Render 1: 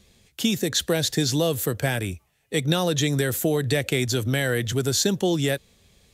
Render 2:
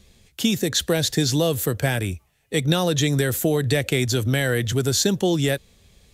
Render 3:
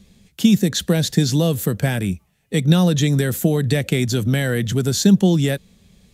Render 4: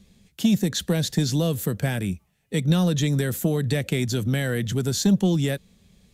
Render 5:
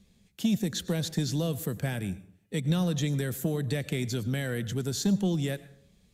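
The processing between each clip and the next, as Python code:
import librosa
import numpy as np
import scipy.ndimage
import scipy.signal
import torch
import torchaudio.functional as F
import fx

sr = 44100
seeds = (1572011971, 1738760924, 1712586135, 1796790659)

y1 = fx.low_shelf(x, sr, hz=61.0, db=8.5)
y1 = y1 * 10.0 ** (1.5 / 20.0)
y2 = fx.peak_eq(y1, sr, hz=190.0, db=13.0, octaves=0.7)
y2 = y2 * 10.0 ** (-1.0 / 20.0)
y3 = 10.0 ** (-5.5 / 20.0) * np.tanh(y2 / 10.0 ** (-5.5 / 20.0))
y3 = y3 * 10.0 ** (-4.5 / 20.0)
y4 = fx.rev_plate(y3, sr, seeds[0], rt60_s=0.58, hf_ratio=0.55, predelay_ms=85, drr_db=16.5)
y4 = y4 * 10.0 ** (-6.5 / 20.0)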